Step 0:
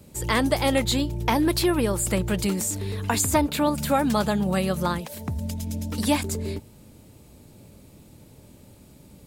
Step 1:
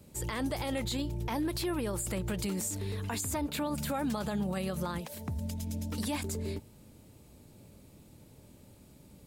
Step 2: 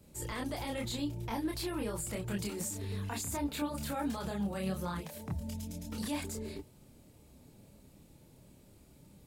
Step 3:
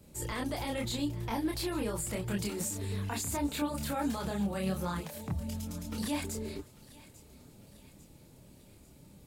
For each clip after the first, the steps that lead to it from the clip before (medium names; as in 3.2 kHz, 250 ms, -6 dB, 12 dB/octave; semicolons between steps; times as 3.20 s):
peak limiter -19 dBFS, peak gain reduction 10.5 dB; trim -6 dB
chorus voices 6, 0.78 Hz, delay 28 ms, depth 3.9 ms
thinning echo 846 ms, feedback 57%, high-pass 1.2 kHz, level -17.5 dB; trim +2.5 dB